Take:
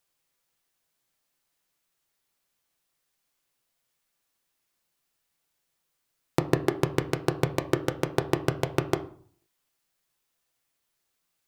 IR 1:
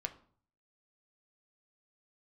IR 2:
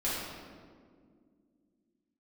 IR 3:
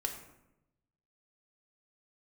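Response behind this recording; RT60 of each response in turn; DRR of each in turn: 1; 0.50 s, 2.0 s, 0.90 s; 6.5 dB, -9.5 dB, 3.0 dB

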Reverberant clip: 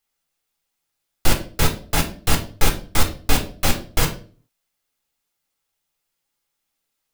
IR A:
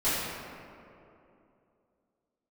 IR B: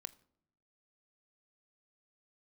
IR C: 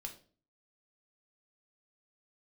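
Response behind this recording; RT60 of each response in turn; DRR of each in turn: C; 2.8 s, no single decay rate, 0.40 s; -14.5 dB, 14.5 dB, 2.5 dB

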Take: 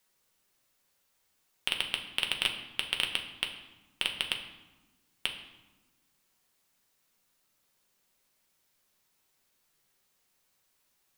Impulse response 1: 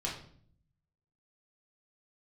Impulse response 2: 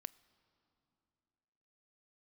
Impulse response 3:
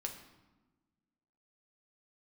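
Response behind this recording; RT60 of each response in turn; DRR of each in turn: 3; 0.55 s, no single decay rate, 1.2 s; -4.5 dB, 19.0 dB, 2.5 dB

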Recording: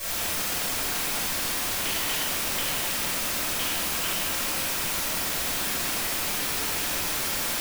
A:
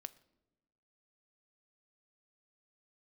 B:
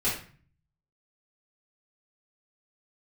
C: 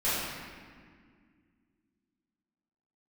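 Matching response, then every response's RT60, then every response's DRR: C; no single decay rate, 0.45 s, 1.9 s; 14.0 dB, -10.5 dB, -15.0 dB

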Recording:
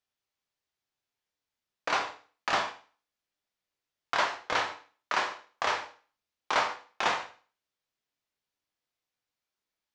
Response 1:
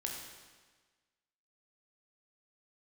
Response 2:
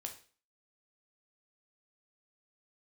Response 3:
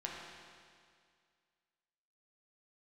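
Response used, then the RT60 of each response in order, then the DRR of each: 2; 1.4 s, 0.40 s, 2.1 s; -0.5 dB, 3.5 dB, -3.5 dB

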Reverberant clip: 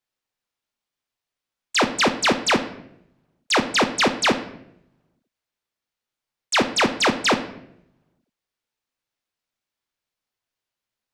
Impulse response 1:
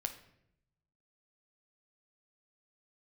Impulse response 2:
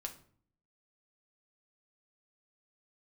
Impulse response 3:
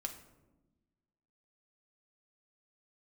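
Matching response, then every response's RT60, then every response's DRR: 1; 0.75 s, 0.50 s, 1.1 s; 6.5 dB, 2.5 dB, 3.5 dB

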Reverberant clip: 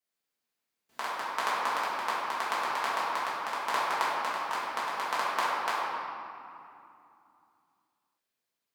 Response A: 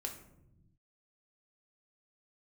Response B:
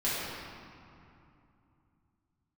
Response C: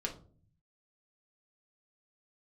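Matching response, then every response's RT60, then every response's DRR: B; 0.90 s, 2.7 s, 0.45 s; 2.0 dB, -10.5 dB, -1.0 dB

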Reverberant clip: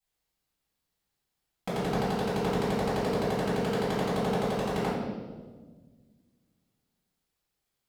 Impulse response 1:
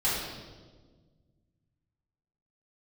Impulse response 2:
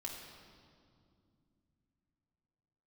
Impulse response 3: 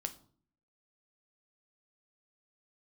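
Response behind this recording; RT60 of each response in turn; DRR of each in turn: 1; 1.5 s, 2.4 s, 0.50 s; -10.0 dB, -2.5 dB, 7.5 dB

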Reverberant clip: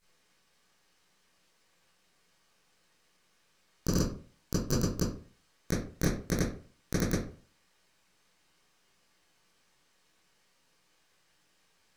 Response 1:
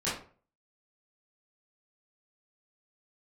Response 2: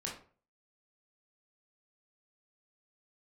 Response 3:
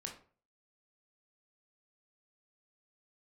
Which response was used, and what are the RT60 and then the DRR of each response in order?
1; 0.45 s, 0.45 s, 0.45 s; -11.5 dB, -3.5 dB, 1.0 dB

